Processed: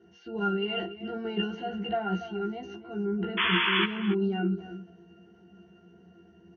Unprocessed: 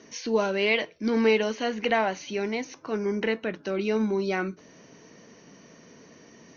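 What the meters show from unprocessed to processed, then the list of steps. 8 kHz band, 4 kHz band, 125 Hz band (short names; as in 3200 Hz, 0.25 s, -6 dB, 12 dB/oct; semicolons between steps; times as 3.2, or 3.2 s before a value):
n/a, +3.5 dB, +4.0 dB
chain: transient shaper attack -2 dB, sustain +10 dB; octave resonator F, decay 0.19 s; painted sound noise, 3.37–3.85, 910–3500 Hz -35 dBFS; doubler 15 ms -2 dB; outdoor echo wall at 49 m, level -13 dB; gain +7 dB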